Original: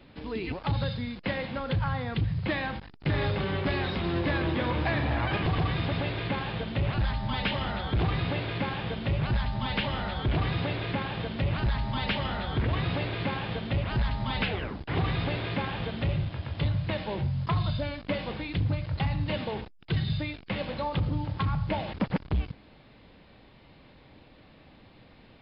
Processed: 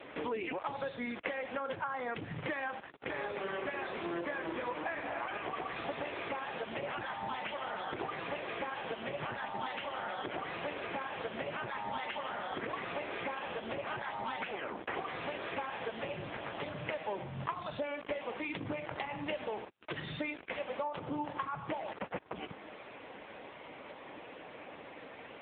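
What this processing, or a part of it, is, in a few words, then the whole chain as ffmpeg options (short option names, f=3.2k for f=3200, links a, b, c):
voicemail: -af "highpass=420,lowpass=2.7k,acompressor=threshold=-47dB:ratio=10,volume=14dB" -ar 8000 -c:a libopencore_amrnb -b:a 6700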